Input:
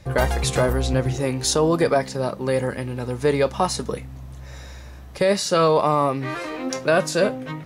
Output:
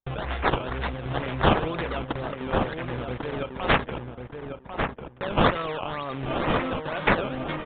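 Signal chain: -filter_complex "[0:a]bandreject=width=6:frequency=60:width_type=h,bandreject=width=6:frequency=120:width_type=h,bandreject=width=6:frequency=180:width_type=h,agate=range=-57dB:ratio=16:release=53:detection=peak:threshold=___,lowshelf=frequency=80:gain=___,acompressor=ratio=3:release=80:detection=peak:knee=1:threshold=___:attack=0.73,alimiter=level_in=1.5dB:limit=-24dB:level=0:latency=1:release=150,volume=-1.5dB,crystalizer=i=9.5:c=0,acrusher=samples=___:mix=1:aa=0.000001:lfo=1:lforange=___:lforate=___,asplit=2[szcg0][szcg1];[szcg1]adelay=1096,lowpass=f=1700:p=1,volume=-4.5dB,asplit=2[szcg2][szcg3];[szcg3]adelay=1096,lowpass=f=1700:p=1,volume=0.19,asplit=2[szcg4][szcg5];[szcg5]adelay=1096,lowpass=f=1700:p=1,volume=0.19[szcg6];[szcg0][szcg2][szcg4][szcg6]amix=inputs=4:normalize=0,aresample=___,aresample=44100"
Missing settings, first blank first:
-33dB, 9.5, -28dB, 16, 16, 2.1, 8000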